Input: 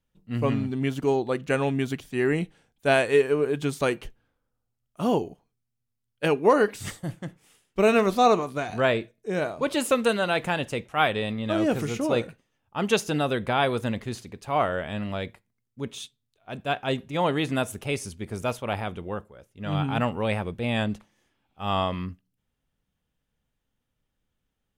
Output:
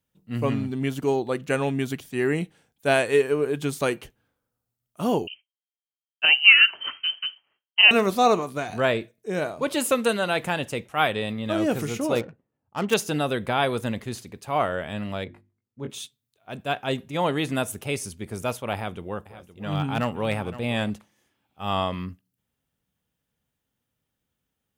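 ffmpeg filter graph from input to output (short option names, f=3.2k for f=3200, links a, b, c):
-filter_complex "[0:a]asettb=1/sr,asplit=3[a][b][c];[a]atrim=end=5.274[d];[b]atrim=start=5.27:end=7.91,asetpts=PTS-STARTPTS,afade=t=in:d=0.004:c=qsin,afade=t=out:st=2.636:d=0.004:c=qsin,lowpass=f=2.7k:t=q:w=0.5098,lowpass=f=2.7k:t=q:w=0.6013,lowpass=f=2.7k:t=q:w=0.9,lowpass=f=2.7k:t=q:w=2.563,afreqshift=-3200,agate=range=-33dB:threshold=-57dB:ratio=3:release=100:detection=peak,highshelf=f=2.1k:g=7[e];[c]atrim=start=7.906[f];[d][e]acrossfade=d=0.004:c1=hsin:c2=qsin[g];[g][f]acrossfade=d=0.004:c1=qsin:c2=hsin,asettb=1/sr,asplit=3[h][i][j];[h]atrim=end=12.154[k];[i]atrim=start=12.15:end=12.94,asetpts=PTS-STARTPTS,afade=t=in:d=0.004:c=qsin,afade=t=out:st=0.786:d=0.004:c=qsin,asuperstop=centerf=5000:order=4:qfactor=6.3,adynamicsmooth=sensitivity=6.5:basefreq=910[l];[j]atrim=start=12.936[m];[k][l]acrossfade=d=0.004:c1=hsin:c2=qsin[n];[n][m]acrossfade=d=0.004:c1=qsin:c2=hsin,asettb=1/sr,asplit=3[o][p][q];[o]atrim=end=15.244[r];[p]atrim=start=15.24:end=15.9,asetpts=PTS-STARTPTS,afade=t=in:d=0.004:c=qsin,afade=t=out:st=0.656:d=0.004:c=qsin,lowpass=f=1.2k:p=1,bandreject=f=50:t=h:w=6,bandreject=f=100:t=h:w=6,bandreject=f=150:t=h:w=6,bandreject=f=200:t=h:w=6,bandreject=f=250:t=h:w=6,bandreject=f=300:t=h:w=6,bandreject=f=350:t=h:w=6,asplit=2[s][t];[t]adelay=20,volume=-4dB[u];[s][u]amix=inputs=2:normalize=0,atrim=end_sample=29106[v];[q]atrim=start=15.896[w];[r][v]acrossfade=d=0.004:c1=hsin:c2=qsin[x];[x][w]acrossfade=d=0.004:c1=qsin:c2=hsin,asettb=1/sr,asplit=3[y][z][aa];[y]atrim=end=18.744[ab];[z]atrim=start=18.74:end=20.9,asetpts=PTS-STARTPTS,afade=t=in:d=0.004:c=qsin,afade=t=out:st=2.156:d=0.004:c=qsin,volume=17dB,asoftclip=hard,volume=-17dB,aecho=1:1:516:0.178,atrim=end_sample=95256[ac];[aa]atrim=start=20.896[ad];[ab][ac]acrossfade=d=0.004:c1=hsin:c2=qsin[ae];[ae][ad]acrossfade=d=0.004:c1=qsin:c2=hsin,highpass=69,highshelf=f=9.9k:g=9.5"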